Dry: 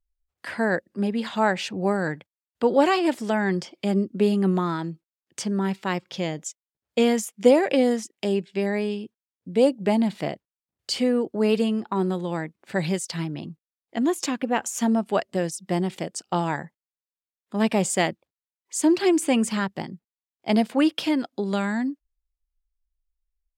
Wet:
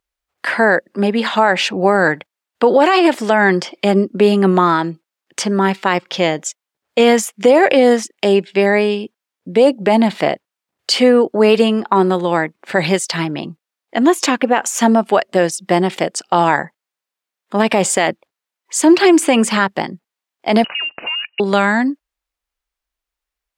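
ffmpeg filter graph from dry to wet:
ffmpeg -i in.wav -filter_complex "[0:a]asettb=1/sr,asplit=3[link_01][link_02][link_03];[link_01]atrim=end=20.644[link_04];[link_02]atrim=start=20.64:end=21.4,asetpts=PTS-STARTPTS,afade=type=in:duration=0.004:curve=qsin,afade=type=out:start_time=0.756:duration=0.004:curve=qsin,acompressor=threshold=-33dB:ratio=16:attack=3.2:release=140:knee=1:detection=peak,lowpass=frequency=2600:width_type=q:width=0.5098,lowpass=frequency=2600:width_type=q:width=0.6013,lowpass=frequency=2600:width_type=q:width=0.9,lowpass=frequency=2600:width_type=q:width=2.563,afreqshift=-3100[link_05];[link_03]atrim=start=21.396[link_06];[link_04][link_05]acrossfade=duration=0.004:curve1=hsin:curve2=qsin[link_07];[link_07][link_06]acrossfade=duration=0.004:curve1=qsin:curve2=hsin,highpass=frequency=670:poles=1,highshelf=frequency=3800:gain=-10.5,alimiter=level_in=19dB:limit=-1dB:release=50:level=0:latency=1,volume=-1dB" out.wav

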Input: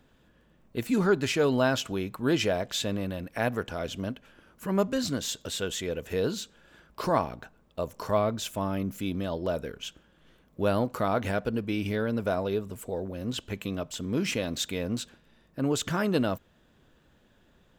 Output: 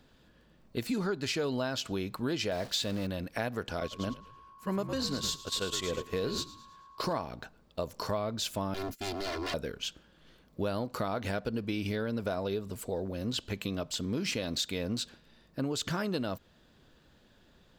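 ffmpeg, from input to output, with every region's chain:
ffmpeg -i in.wav -filter_complex "[0:a]asettb=1/sr,asplit=3[link_01][link_02][link_03];[link_01]atrim=end=2.514[link_04];[link_02]atrim=start=2.51:end=3.07,asetpts=PTS-STARTPTS,afade=type=in:duration=0.004:curve=qsin,afade=type=out:start_time=0.556:duration=0.004:curve=qsin,aeval=exprs='val(0)+0.5*0.0141*sgn(val(0))':channel_layout=same,agate=range=-33dB:threshold=-33dB:ratio=3:release=100:detection=peak[link_05];[link_03]atrim=start=3.066[link_06];[link_04][link_05]acrossfade=duration=0.004:curve1=hsin:curve2=qsin[link_07];[link_07][link_06]acrossfade=duration=0.004:curve1=qsin:curve2=hsin,asettb=1/sr,asplit=3[link_08][link_09][link_10];[link_08]atrim=end=3.804[link_11];[link_09]atrim=start=3.8:end=7.13,asetpts=PTS-STARTPTS,afade=type=in:duration=0.004:curve=qsin,afade=type=out:start_time=3.326:duration=0.004:curve=qsin,aeval=exprs='val(0)+0.00794*sin(2*PI*1100*n/s)':channel_layout=same,asplit=6[link_12][link_13][link_14][link_15][link_16][link_17];[link_13]adelay=108,afreqshift=-59,volume=-9dB[link_18];[link_14]adelay=216,afreqshift=-118,volume=-15.7dB[link_19];[link_15]adelay=324,afreqshift=-177,volume=-22.5dB[link_20];[link_16]adelay=432,afreqshift=-236,volume=-29.2dB[link_21];[link_17]adelay=540,afreqshift=-295,volume=-36dB[link_22];[link_12][link_18][link_19][link_20][link_21][link_22]amix=inputs=6:normalize=0,atrim=end_sample=146853,agate=range=-11dB:threshold=-35dB:ratio=16:release=100:detection=peak[link_23];[link_10]atrim=start=7.126[link_24];[link_11][link_23]acrossfade=duration=0.004:curve1=hsin:curve2=qsin[link_25];[link_25][link_24]acrossfade=duration=0.004:curve1=qsin:curve2=hsin,asettb=1/sr,asplit=3[link_26][link_27][link_28];[link_26]atrim=end=8.744[link_29];[link_27]atrim=start=8.74:end=9.54,asetpts=PTS-STARTPTS,afade=type=in:duration=0.004:curve=qsin,afade=type=out:start_time=0.796:duration=0.004:curve=qsin,agate=range=-24dB:threshold=-42dB:ratio=16:release=100:detection=peak,aeval=exprs='0.0224*(abs(mod(val(0)/0.0224+3,4)-2)-1)':channel_layout=same,aecho=1:1:2.9:0.87,atrim=end_sample=35280[link_30];[link_28]atrim=start=9.536[link_31];[link_29][link_30]acrossfade=duration=0.004:curve1=hsin:curve2=qsin[link_32];[link_32][link_31]acrossfade=duration=0.004:curve1=qsin:curve2=hsin,equalizer=frequency=4500:width_type=o:width=0.56:gain=8.5,acompressor=threshold=-29dB:ratio=6" out.wav

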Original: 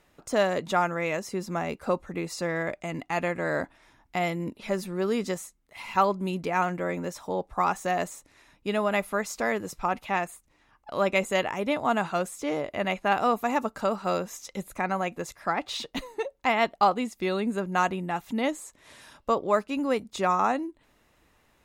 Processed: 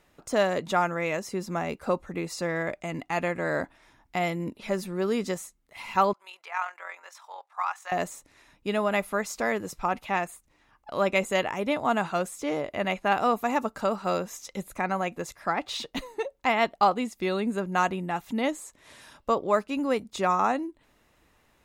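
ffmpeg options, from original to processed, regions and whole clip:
ffmpeg -i in.wav -filter_complex "[0:a]asettb=1/sr,asplit=3[link_01][link_02][link_03];[link_01]atrim=end=6.134[link_04];[link_02]atrim=start=6.13:end=7.92,asetpts=PTS-STARTPTS,afade=type=in:duration=0.004:curve=qsin,afade=type=out:start_time=1.786:duration=0.004:curve=qsin,highpass=frequency=910:width=0.5412,highpass=frequency=910:width=1.3066,tremolo=f=43:d=0.462,aemphasis=mode=reproduction:type=cd[link_05];[link_03]atrim=start=7.916[link_06];[link_04][link_05]acrossfade=duration=0.004:curve1=hsin:curve2=qsin[link_07];[link_07][link_06]acrossfade=duration=0.004:curve1=qsin:curve2=hsin" out.wav

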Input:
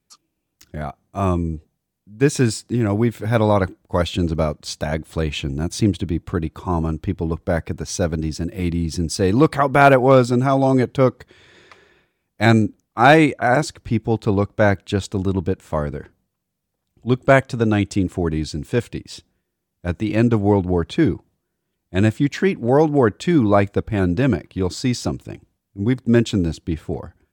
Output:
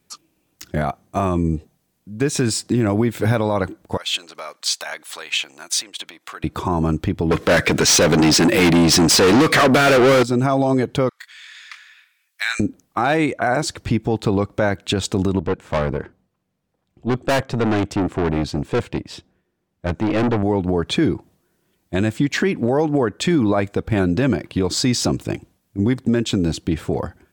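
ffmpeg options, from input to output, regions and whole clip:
ffmpeg -i in.wav -filter_complex "[0:a]asettb=1/sr,asplit=3[link_01][link_02][link_03];[link_01]atrim=end=3.974[link_04];[link_02]atrim=start=3.97:end=6.44,asetpts=PTS-STARTPTS,afade=type=in:duration=0.004:curve=qsin,afade=type=out:start_time=2.466:duration=0.004:curve=qsin,acompressor=threshold=-25dB:ratio=10:attack=3.2:release=140:knee=1:detection=peak,highpass=1200[link_05];[link_03]atrim=start=6.436[link_06];[link_04][link_05]acrossfade=duration=0.004:curve1=hsin:curve2=qsin[link_07];[link_07][link_06]acrossfade=duration=0.004:curve1=qsin:curve2=hsin,asettb=1/sr,asplit=3[link_08][link_09][link_10];[link_08]atrim=end=7.314[link_11];[link_09]atrim=start=7.31:end=10.23,asetpts=PTS-STARTPTS,afade=type=in:duration=0.004:curve=qsin,afade=type=out:start_time=2.916:duration=0.004:curve=qsin,equalizer=frequency=870:width_type=o:width=0.55:gain=-14.5,asplit=2[link_12][link_13];[link_13]highpass=frequency=720:poles=1,volume=36dB,asoftclip=type=tanh:threshold=-3dB[link_14];[link_12][link_14]amix=inputs=2:normalize=0,lowpass=frequency=4500:poles=1,volume=-6dB[link_15];[link_10]atrim=start=10.226[link_16];[link_11][link_15]acrossfade=duration=0.004:curve1=hsin:curve2=qsin[link_17];[link_17][link_16]acrossfade=duration=0.004:curve1=qsin:curve2=hsin,asettb=1/sr,asplit=3[link_18][link_19][link_20];[link_18]atrim=end=11.094[link_21];[link_19]atrim=start=11.09:end=12.6,asetpts=PTS-STARTPTS,afade=type=in:duration=0.004:curve=qsin,afade=type=out:start_time=1.506:duration=0.004:curve=qsin,highpass=frequency=1500:width=0.5412,highpass=frequency=1500:width=1.3066,asplit=2[link_22][link_23];[link_23]adelay=25,volume=-8.5dB[link_24];[link_22][link_24]amix=inputs=2:normalize=0,atrim=end_sample=66591[link_25];[link_20]atrim=start=12.596[link_26];[link_21][link_25]acrossfade=duration=0.004:curve1=hsin:curve2=qsin[link_27];[link_27][link_26]acrossfade=duration=0.004:curve1=qsin:curve2=hsin,asettb=1/sr,asplit=3[link_28][link_29][link_30];[link_28]atrim=end=15.394[link_31];[link_29]atrim=start=15.39:end=20.43,asetpts=PTS-STARTPTS,afade=type=in:duration=0.004:curve=qsin,afade=type=out:start_time=5.036:duration=0.004:curve=qsin,lowpass=frequency=2100:poles=1,aeval=exprs='(tanh(17.8*val(0)+0.65)-tanh(0.65))/17.8':channel_layout=same[link_32];[link_30]atrim=start=20.426[link_33];[link_31][link_32]acrossfade=duration=0.004:curve1=hsin:curve2=qsin[link_34];[link_34][link_33]acrossfade=duration=0.004:curve1=qsin:curve2=hsin,lowshelf=frequency=82:gain=-10,acompressor=threshold=-22dB:ratio=12,alimiter=level_in=18.5dB:limit=-1dB:release=50:level=0:latency=1,volume=-8dB" out.wav

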